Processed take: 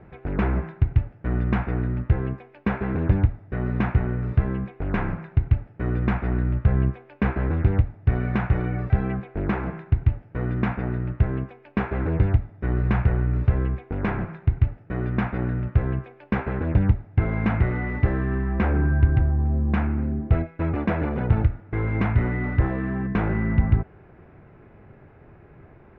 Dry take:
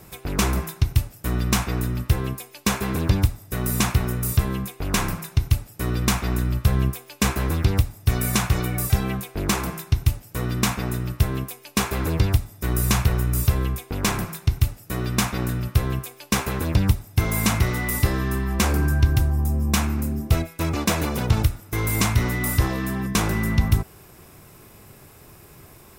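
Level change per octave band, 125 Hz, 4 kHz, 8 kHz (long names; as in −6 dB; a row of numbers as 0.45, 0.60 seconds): 0.0 dB, below −20 dB, below −40 dB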